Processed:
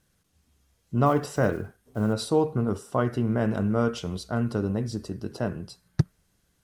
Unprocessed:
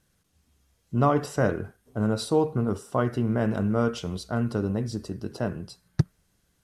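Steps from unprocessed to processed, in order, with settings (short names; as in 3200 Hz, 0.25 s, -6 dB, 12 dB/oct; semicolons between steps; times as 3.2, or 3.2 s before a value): 1.06–2.14 block floating point 7-bit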